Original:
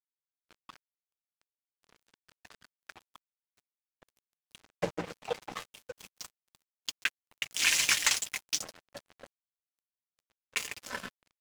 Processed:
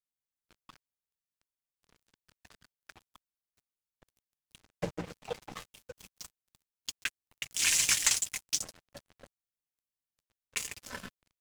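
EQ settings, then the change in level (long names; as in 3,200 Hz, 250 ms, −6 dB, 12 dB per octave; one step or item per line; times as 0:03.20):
low-shelf EQ 200 Hz +11.5 dB
high-shelf EQ 4,700 Hz +5 dB
dynamic equaliser 8,100 Hz, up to +6 dB, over −42 dBFS, Q 1.1
−5.5 dB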